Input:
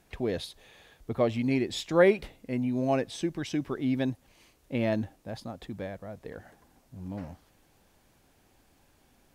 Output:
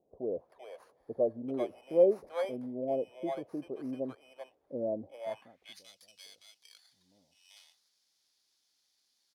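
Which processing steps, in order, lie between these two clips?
FFT order left unsorted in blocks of 16 samples; bands offset in time lows, highs 0.39 s, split 720 Hz; band-pass sweep 570 Hz -> 4800 Hz, 5.22–5.83; gain +2.5 dB

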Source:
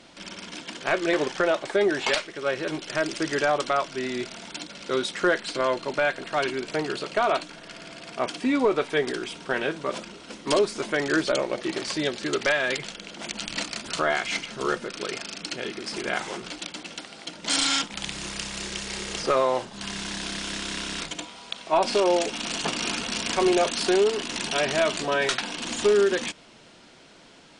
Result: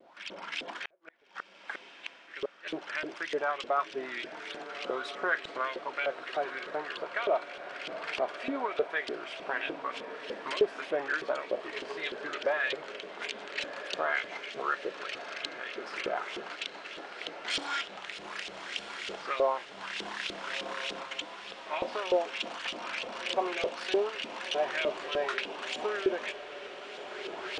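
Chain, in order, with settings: recorder AGC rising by 17 dB/s; 0.84–2.77 flipped gate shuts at -16 dBFS, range -40 dB; LFO band-pass saw up 3.3 Hz 430–3300 Hz; vibrato 1.6 Hz 57 cents; diffused feedback echo 1.341 s, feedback 60%, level -12 dB

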